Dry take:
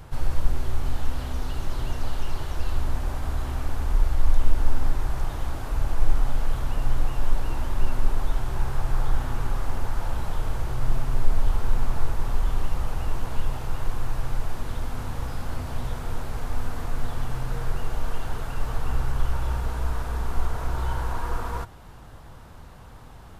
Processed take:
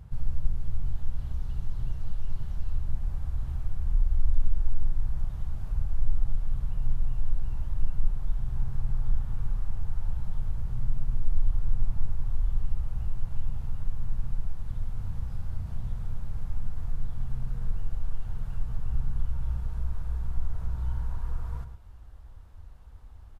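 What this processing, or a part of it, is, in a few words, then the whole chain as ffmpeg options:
parallel compression: -filter_complex "[0:a]asplit=2[s0][s1];[s1]acompressor=threshold=0.0355:ratio=6,volume=0.891[s2];[s0][s2]amix=inputs=2:normalize=0,afwtdn=0.0794,aecho=1:1:108:0.299,volume=0.562"

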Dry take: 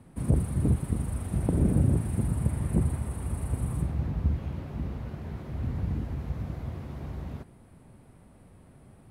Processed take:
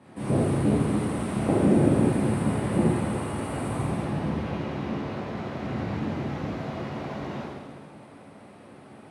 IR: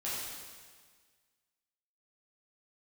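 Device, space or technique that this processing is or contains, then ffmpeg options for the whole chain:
supermarket ceiling speaker: -filter_complex "[0:a]highpass=250,lowpass=5900[s0];[1:a]atrim=start_sample=2205[s1];[s0][s1]afir=irnorm=-1:irlink=0,volume=2.66"

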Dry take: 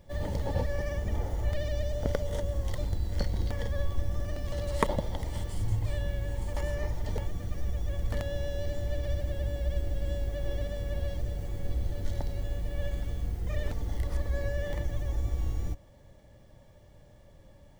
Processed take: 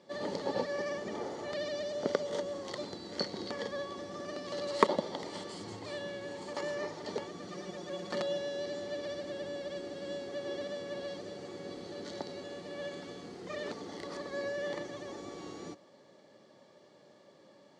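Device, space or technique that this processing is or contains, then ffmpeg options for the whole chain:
television speaker: -filter_complex "[0:a]asettb=1/sr,asplit=3[s0][s1][s2];[s0]atrim=end=7.474[s3];[s1]atrim=start=7.47:end=8.38,asetpts=PTS-STARTPTS,afade=t=in:d=0.004:c=qsin,afade=t=out:st=0.906:d=0.004:c=qsin,aecho=1:1:5.6:0.72,atrim=end_sample=40131[s4];[s2]atrim=start=8.376[s5];[s3][s4]acrossfade=d=0.004:c1=hsin:c2=qsin[s6];[s6][s5]acrossfade=d=0.004:c1=qsin:c2=hsin,highpass=f=200:w=0.5412,highpass=f=200:w=1.3066,equalizer=f=390:t=q:w=4:g=7,equalizer=f=1200:t=q:w=4:g=6,equalizer=f=4400:t=q:w=4:g=9,lowpass=f=7600:w=0.5412,lowpass=f=7600:w=1.3066"

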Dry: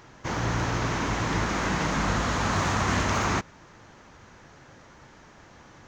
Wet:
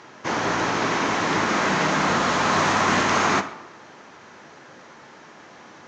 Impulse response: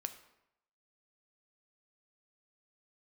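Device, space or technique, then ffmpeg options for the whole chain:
supermarket ceiling speaker: -filter_complex "[0:a]highpass=230,lowpass=6700[s0];[1:a]atrim=start_sample=2205[s1];[s0][s1]afir=irnorm=-1:irlink=0,volume=2.66"

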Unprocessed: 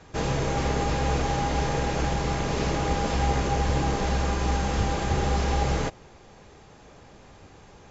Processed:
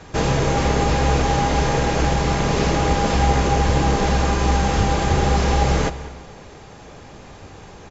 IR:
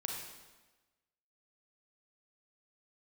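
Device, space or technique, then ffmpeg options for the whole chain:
ducked reverb: -filter_complex "[0:a]asplit=2[s0][s1];[s1]adelay=198.3,volume=0.126,highshelf=f=4000:g=-4.46[s2];[s0][s2]amix=inputs=2:normalize=0,asplit=3[s3][s4][s5];[1:a]atrim=start_sample=2205[s6];[s4][s6]afir=irnorm=-1:irlink=0[s7];[s5]apad=whole_len=357299[s8];[s7][s8]sidechaincompress=threshold=0.0398:ratio=8:attack=16:release=570,volume=0.562[s9];[s3][s9]amix=inputs=2:normalize=0,volume=1.88"

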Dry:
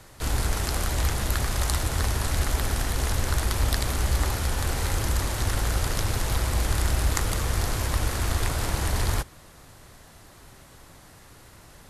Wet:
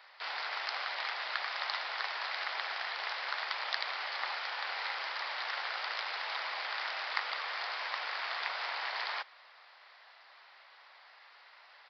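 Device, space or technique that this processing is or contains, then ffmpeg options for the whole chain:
musical greeting card: -af "aresample=11025,aresample=44100,highpass=f=730:w=0.5412,highpass=f=730:w=1.3066,equalizer=f=2100:t=o:w=0.54:g=4.5,volume=0.668"

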